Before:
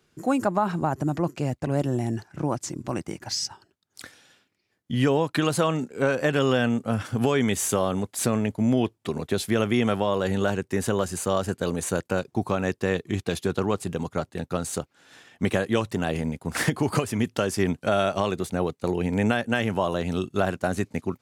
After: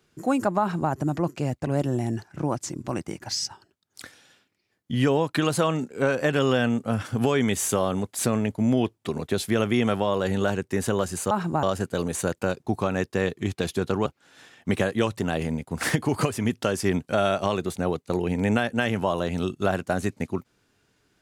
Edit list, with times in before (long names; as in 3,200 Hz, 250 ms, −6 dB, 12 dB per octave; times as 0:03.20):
0:00.60–0:00.92: duplicate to 0:11.31
0:13.74–0:14.80: remove